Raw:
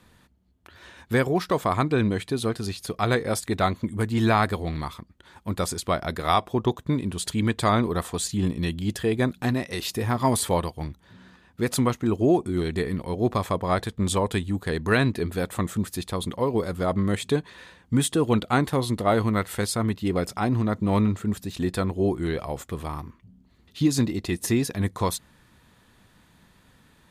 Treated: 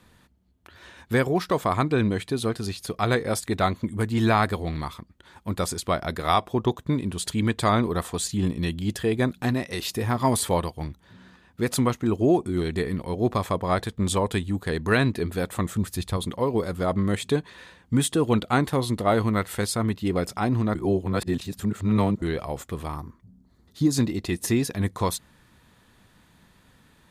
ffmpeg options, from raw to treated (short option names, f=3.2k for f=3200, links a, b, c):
-filter_complex "[0:a]asettb=1/sr,asplit=3[a][b][c];[a]atrim=end=15.584[d];[b]atrim=start=15.58:end=16.17,asetpts=PTS-STARTPTS,afade=t=in:d=0.004:c=qsin,afade=t=out:st=0.586:d=0.004:c=qsin,asubboost=boost=11:cutoff=160[e];[c]atrim=start=16.166[f];[d][e]acrossfade=d=0.004:c1=hsin:c2=qsin[g];[g][f]acrossfade=d=0.004:c1=qsin:c2=hsin,asettb=1/sr,asplit=3[h][i][j];[h]atrim=end=22.964[k];[i]atrim=start=22.96:end=23.93,asetpts=PTS-STARTPTS,afade=t=in:d=0.004:c=qsin,afade=t=out:st=0.966:d=0.004:c=qsin,equalizer=f=2.7k:t=o:w=0.71:g=-14.5[l];[j]atrim=start=23.926[m];[k][l]acrossfade=d=0.004:c1=hsin:c2=qsin[n];[n][m]acrossfade=d=0.004:c1=qsin:c2=hsin,asplit=3[o][p][q];[o]atrim=end=20.752[r];[p]atrim=start=20.748:end=22.222,asetpts=PTS-STARTPTS,areverse[s];[q]atrim=start=22.218[t];[r][s]acrossfade=d=0.004:c1=hsin:c2=hsin[u];[u][t]acrossfade=d=0.004:c1=hsin:c2=hsin"